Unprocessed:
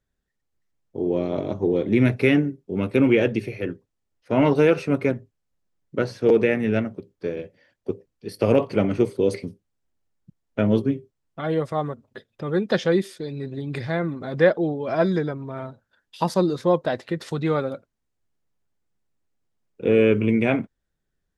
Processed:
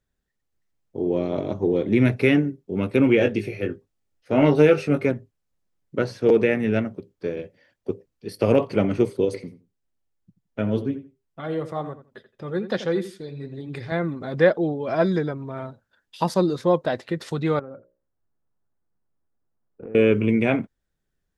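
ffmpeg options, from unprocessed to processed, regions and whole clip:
-filter_complex "[0:a]asettb=1/sr,asplit=3[s0][s1][s2];[s0]atrim=end=3.174[s3];[s1]atrim=start=3.17:end=5.06,asetpts=PTS-STARTPTS,afade=t=in:d=0.004:c=qsin,afade=t=out:st=1.886:d=0.004:c=qsin,bandreject=f=1000:w=8.7,asplit=2[s4][s5];[s5]adelay=20,volume=0.473[s6];[s4][s6]amix=inputs=2:normalize=0,atrim=end_sample=83349[s7];[s2]atrim=start=5.056[s8];[s3][s7]acrossfade=d=0.004:c1=hsin:c2=qsin[s9];[s9][s8]acrossfade=d=0.004:c1=qsin:c2=hsin,asettb=1/sr,asplit=3[s10][s11][s12];[s10]atrim=end=9.254[s13];[s11]atrim=start=9.25:end=13.92,asetpts=PTS-STARTPTS,afade=t=in:d=0.004:c=qsin,afade=t=out:st=4.666:d=0.004:c=qsin,flanger=delay=2.3:depth=6.5:regen=-67:speed=1.1:shape=sinusoidal,asplit=2[s14][s15];[s15]adelay=84,lowpass=f=2900:p=1,volume=0.237,asplit=2[s16][s17];[s17]adelay=84,lowpass=f=2900:p=1,volume=0.19[s18];[s14][s16][s18]amix=inputs=3:normalize=0,atrim=end_sample=205947[s19];[s12]atrim=start=13.916[s20];[s13][s19]acrossfade=d=0.004:c1=hsin:c2=qsin[s21];[s21][s20]acrossfade=d=0.004:c1=qsin:c2=hsin,asettb=1/sr,asplit=3[s22][s23][s24];[s22]atrim=end=17.594[s25];[s23]atrim=start=17.59:end=19.95,asetpts=PTS-STARTPTS,afade=t=in:d=0.004:c=qsin,afade=t=out:st=2.356:d=0.004:c=qsin,lowpass=f=1600:w=0.5412,lowpass=f=1600:w=1.3066,bandreject=f=60:t=h:w=6,bandreject=f=120:t=h:w=6,bandreject=f=180:t=h:w=6,bandreject=f=240:t=h:w=6,bandreject=f=300:t=h:w=6,bandreject=f=360:t=h:w=6,bandreject=f=420:t=h:w=6,bandreject=f=480:t=h:w=6,bandreject=f=540:t=h:w=6,bandreject=f=600:t=h:w=6,acompressor=threshold=0.0224:ratio=12:attack=3.2:release=140:knee=1:detection=peak[s26];[s24]atrim=start=19.946[s27];[s25][s26]acrossfade=d=0.004:c1=hsin:c2=qsin[s28];[s28][s27]acrossfade=d=0.004:c1=qsin:c2=hsin"

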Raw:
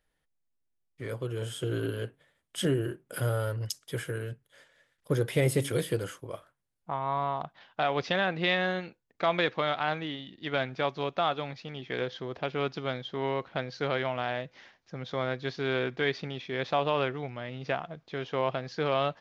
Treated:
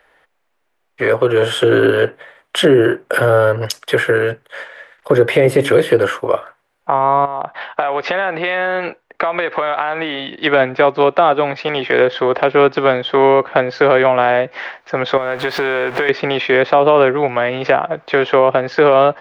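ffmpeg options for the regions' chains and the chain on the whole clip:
-filter_complex "[0:a]asettb=1/sr,asplit=3[s0][s1][s2];[s0]atrim=end=7.254[s3];[s1]atrim=start=7.25:end=10.42,asetpts=PTS-STARTPTS,afade=t=in:d=0.004:c=qsin,afade=t=out:st=3.166:d=0.004:c=qsin,highshelf=f=5100:g=-5.5,acompressor=threshold=0.0126:ratio=10:attack=3.2:release=140:knee=1:detection=peak[s4];[s2]atrim=start=10.416[s5];[s3][s4]acrossfade=d=0.004:c1=hsin:c2=qsin[s6];[s6][s5]acrossfade=d=0.004:c1=qsin:c2=hsin,asettb=1/sr,asplit=3[s7][s8][s9];[s7]atrim=end=15.174[s10];[s8]atrim=start=15.17:end=16.09,asetpts=PTS-STARTPTS,afade=t=in:d=0.004:c=qsin,afade=t=out:st=0.916:d=0.004:c=qsin,aeval=exprs='val(0)+0.5*0.01*sgn(val(0))':c=same,acompressor=threshold=0.0158:ratio=16:attack=3.2:release=140:knee=1:detection=peak[s11];[s9]atrim=start=16.086[s12];[s10][s11]acrossfade=d=0.004:c1=hsin:c2=qsin[s13];[s13][s12]acrossfade=d=0.004:c1=qsin:c2=hsin,acrossover=split=420 2600:gain=0.0891 1 0.126[s14][s15][s16];[s14][s15][s16]amix=inputs=3:normalize=0,acrossover=split=410[s17][s18];[s18]acompressor=threshold=0.00501:ratio=3[s19];[s17][s19]amix=inputs=2:normalize=0,alimiter=level_in=35.5:limit=0.891:release=50:level=0:latency=1,volume=0.891"

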